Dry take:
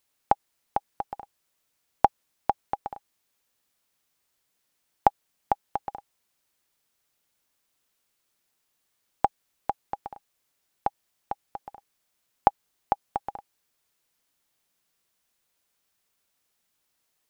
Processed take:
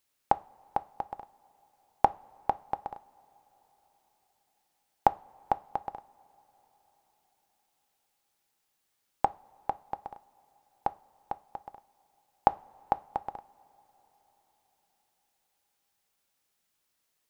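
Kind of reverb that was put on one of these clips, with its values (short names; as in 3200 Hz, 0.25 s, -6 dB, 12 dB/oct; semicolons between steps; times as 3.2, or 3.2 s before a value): two-slope reverb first 0.32 s, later 4.9 s, from -22 dB, DRR 14.5 dB; gain -2.5 dB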